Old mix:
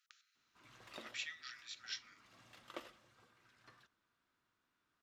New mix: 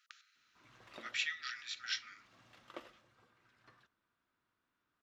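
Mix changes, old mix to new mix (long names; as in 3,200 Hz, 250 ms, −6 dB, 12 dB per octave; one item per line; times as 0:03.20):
speech +10.0 dB
master: add high-shelf EQ 4,500 Hz −8.5 dB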